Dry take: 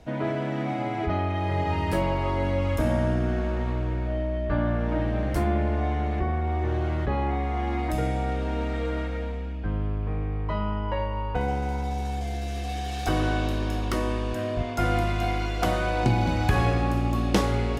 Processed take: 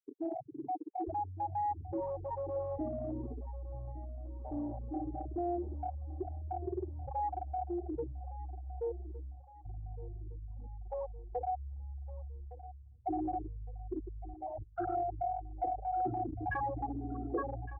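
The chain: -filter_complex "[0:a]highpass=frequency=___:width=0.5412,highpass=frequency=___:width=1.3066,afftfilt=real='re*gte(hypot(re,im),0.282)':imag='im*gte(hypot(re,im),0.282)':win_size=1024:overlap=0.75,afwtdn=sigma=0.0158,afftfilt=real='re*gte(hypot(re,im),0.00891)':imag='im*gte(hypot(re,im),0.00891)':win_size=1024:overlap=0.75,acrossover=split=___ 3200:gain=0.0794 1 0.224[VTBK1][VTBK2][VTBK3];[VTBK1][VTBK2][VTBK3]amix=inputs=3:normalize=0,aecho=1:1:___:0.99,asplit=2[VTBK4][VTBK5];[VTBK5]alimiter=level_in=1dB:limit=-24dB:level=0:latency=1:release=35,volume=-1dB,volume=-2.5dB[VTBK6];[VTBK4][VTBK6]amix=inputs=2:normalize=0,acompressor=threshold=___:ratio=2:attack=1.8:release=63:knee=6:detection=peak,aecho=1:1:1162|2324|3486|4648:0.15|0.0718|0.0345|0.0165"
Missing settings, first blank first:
46, 46, 320, 2.5, -38dB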